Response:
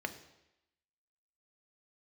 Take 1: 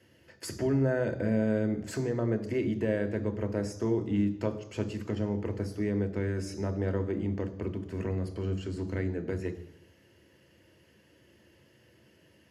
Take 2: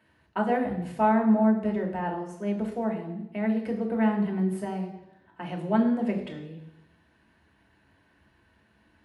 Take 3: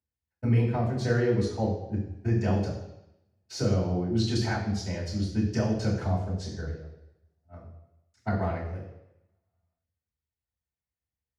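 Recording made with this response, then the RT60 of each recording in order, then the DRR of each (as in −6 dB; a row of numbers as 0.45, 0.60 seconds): 1; 0.90, 0.90, 0.90 seconds; 7.0, 0.5, −5.5 decibels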